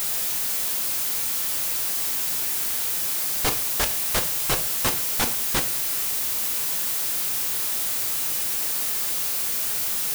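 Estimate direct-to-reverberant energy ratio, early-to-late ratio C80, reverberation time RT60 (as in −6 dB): 7.0 dB, 17.5 dB, 0.45 s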